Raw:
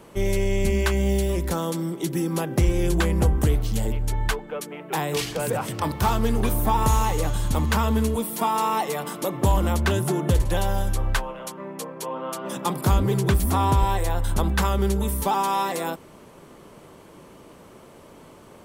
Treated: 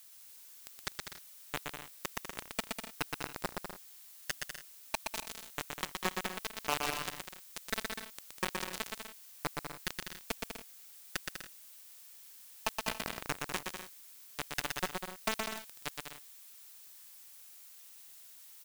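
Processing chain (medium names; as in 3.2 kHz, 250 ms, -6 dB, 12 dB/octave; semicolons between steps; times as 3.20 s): vocoder on a broken chord major triad, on D3, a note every 435 ms; high-pass 1.3 kHz 6 dB/octave; comb 5.7 ms, depth 43%; compression 4:1, threshold -35 dBFS, peak gain reduction 7.5 dB; bit crusher 5-bit; added noise blue -61 dBFS; bouncing-ball echo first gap 120 ms, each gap 0.65×, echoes 5; trim +4.5 dB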